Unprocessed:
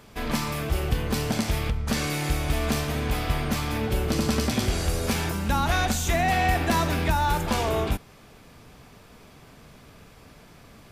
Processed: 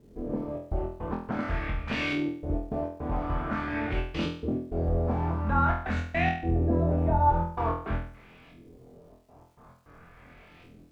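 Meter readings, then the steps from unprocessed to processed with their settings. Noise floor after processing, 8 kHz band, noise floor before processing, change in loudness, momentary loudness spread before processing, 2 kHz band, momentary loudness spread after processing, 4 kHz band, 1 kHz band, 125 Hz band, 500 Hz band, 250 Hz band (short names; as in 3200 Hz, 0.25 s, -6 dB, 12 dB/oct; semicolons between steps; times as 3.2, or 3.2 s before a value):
-55 dBFS, under -25 dB, -51 dBFS, -3.5 dB, 5 LU, -5.5 dB, 9 LU, -12.5 dB, -2.5 dB, -3.0 dB, -3.0 dB, -2.5 dB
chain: LFO low-pass saw up 0.47 Hz 330–3100 Hz; step gate "xxxx.x.x.xxx" 105 bpm -60 dB; crackle 500/s -55 dBFS; flutter echo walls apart 4.1 m, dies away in 0.5 s; gain -7 dB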